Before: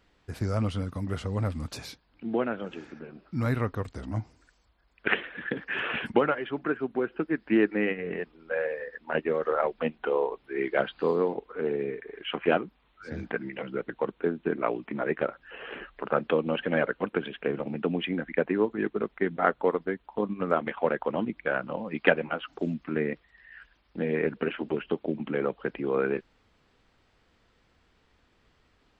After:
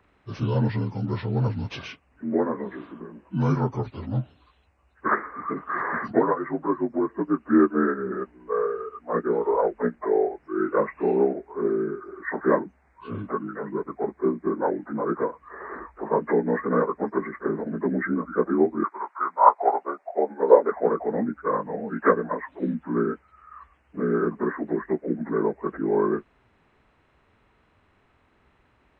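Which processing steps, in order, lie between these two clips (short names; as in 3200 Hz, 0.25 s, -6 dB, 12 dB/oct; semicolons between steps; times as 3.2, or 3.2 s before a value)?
inharmonic rescaling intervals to 81%; 18.83–20.7 resonant high-pass 1200 Hz -> 420 Hz, resonance Q 3.5; gain +5.5 dB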